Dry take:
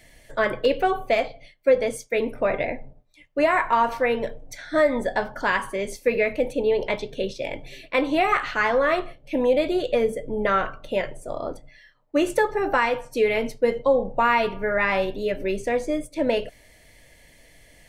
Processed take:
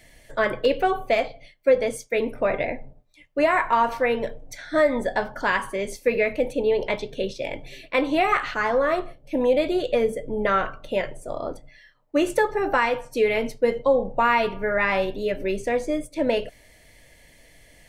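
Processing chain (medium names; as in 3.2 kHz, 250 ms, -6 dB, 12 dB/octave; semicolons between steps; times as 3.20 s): 8.54–9.41 s: peaking EQ 2.7 kHz -6.5 dB 1.4 oct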